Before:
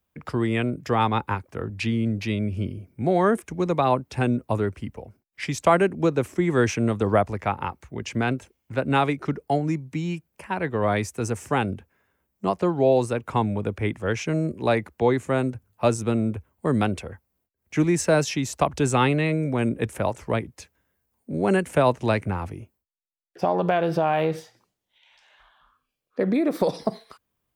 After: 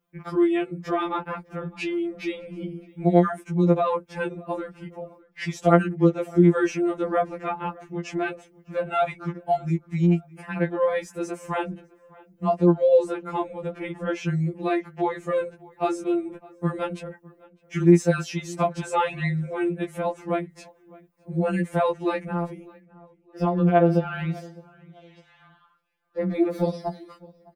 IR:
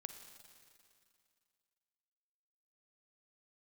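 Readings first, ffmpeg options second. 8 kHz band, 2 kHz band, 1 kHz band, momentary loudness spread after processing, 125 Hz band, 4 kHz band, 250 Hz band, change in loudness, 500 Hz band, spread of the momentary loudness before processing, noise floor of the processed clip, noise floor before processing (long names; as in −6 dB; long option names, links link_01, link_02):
−8.0 dB, −3.5 dB, −2.0 dB, 15 LU, −0.5 dB, −6.0 dB, +1.0 dB, −0.5 dB, −0.5 dB, 10 LU, −60 dBFS, −78 dBFS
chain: -filter_complex "[0:a]highshelf=frequency=2500:gain=-9.5,bandreject=frequency=950:width=7.2,asplit=2[link_01][link_02];[link_02]acompressor=threshold=-32dB:ratio=6,volume=0dB[link_03];[link_01][link_03]amix=inputs=2:normalize=0,asplit=2[link_04][link_05];[link_05]adelay=607,lowpass=frequency=2400:poles=1,volume=-23dB,asplit=2[link_06][link_07];[link_07]adelay=607,lowpass=frequency=2400:poles=1,volume=0.34[link_08];[link_04][link_06][link_08]amix=inputs=3:normalize=0,afftfilt=real='re*2.83*eq(mod(b,8),0)':imag='im*2.83*eq(mod(b,8),0)':win_size=2048:overlap=0.75"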